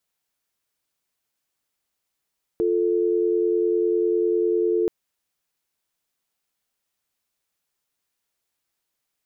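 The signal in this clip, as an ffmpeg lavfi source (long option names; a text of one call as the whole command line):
ffmpeg -f lavfi -i "aevalsrc='0.0891*(sin(2*PI*350*t)+sin(2*PI*440*t))':duration=2.28:sample_rate=44100" out.wav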